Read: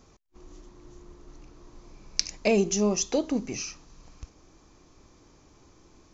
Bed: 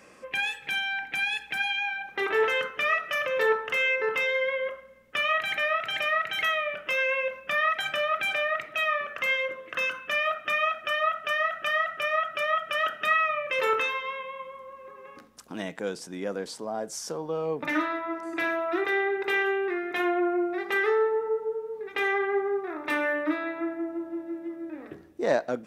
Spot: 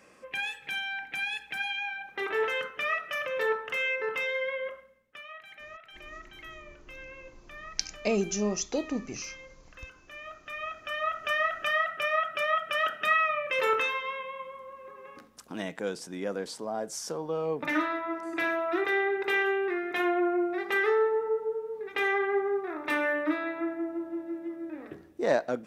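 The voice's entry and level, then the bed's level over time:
5.60 s, -4.5 dB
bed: 4.80 s -4.5 dB
5.24 s -20 dB
10.04 s -20 dB
11.30 s -1 dB

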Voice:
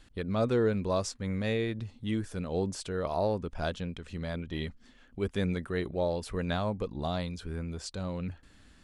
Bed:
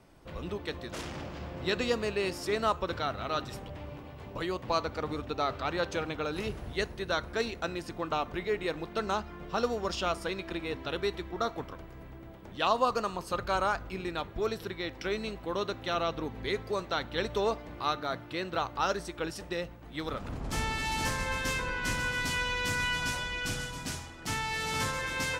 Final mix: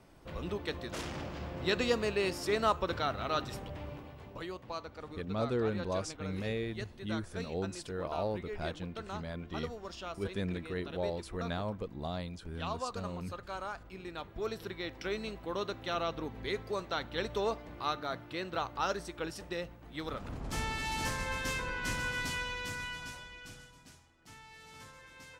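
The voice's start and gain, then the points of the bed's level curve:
5.00 s, -5.5 dB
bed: 3.89 s -0.5 dB
4.75 s -11.5 dB
13.68 s -11.5 dB
14.68 s -3.5 dB
22.19 s -3.5 dB
23.98 s -20.5 dB

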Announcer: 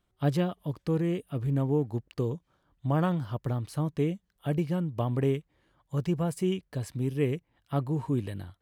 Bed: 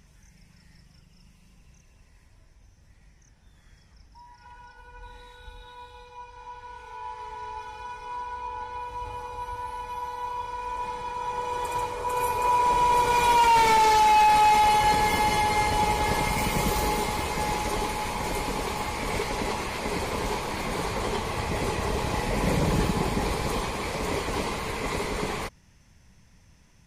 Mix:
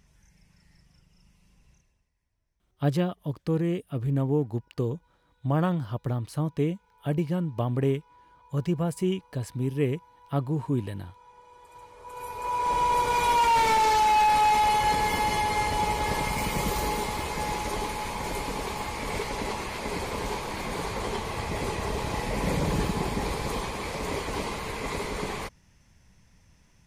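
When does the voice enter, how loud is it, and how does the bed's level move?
2.60 s, +1.5 dB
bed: 1.73 s -5.5 dB
2.13 s -22.5 dB
11.65 s -22.5 dB
12.75 s -2.5 dB

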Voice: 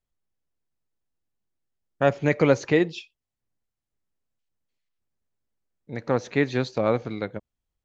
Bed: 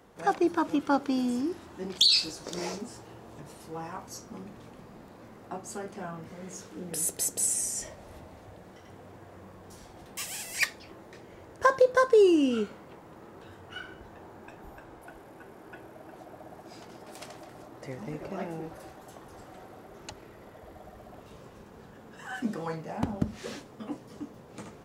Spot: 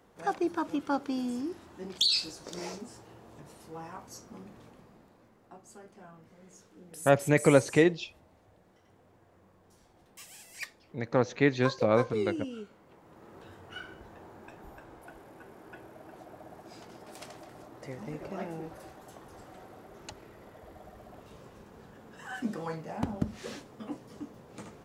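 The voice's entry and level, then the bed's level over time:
5.05 s, -2.0 dB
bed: 4.62 s -4.5 dB
5.35 s -13 dB
12.65 s -13 dB
13.36 s -2 dB

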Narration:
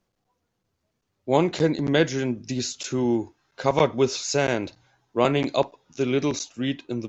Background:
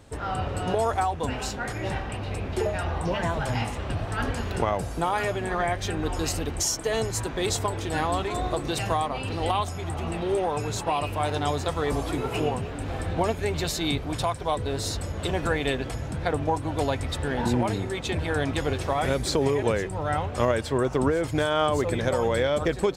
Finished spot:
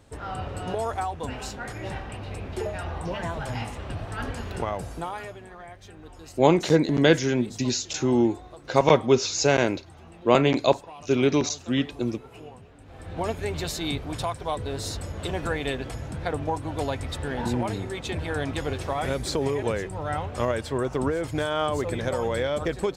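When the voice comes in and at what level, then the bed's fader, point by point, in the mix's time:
5.10 s, +2.0 dB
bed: 4.92 s -4 dB
5.56 s -17.5 dB
12.85 s -17.5 dB
13.27 s -2.5 dB

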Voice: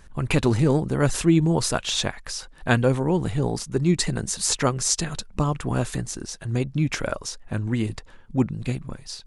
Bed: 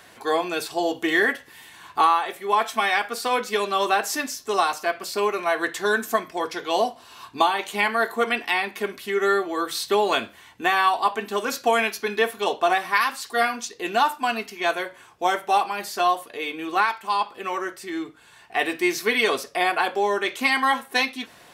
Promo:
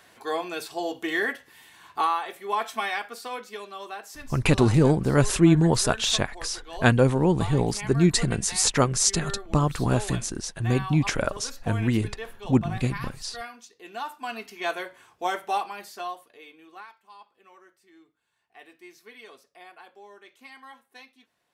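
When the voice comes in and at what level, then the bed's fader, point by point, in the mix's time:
4.15 s, +1.0 dB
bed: 2.80 s -6 dB
3.78 s -16.5 dB
13.85 s -16.5 dB
14.55 s -5.5 dB
15.48 s -5.5 dB
17.02 s -26 dB

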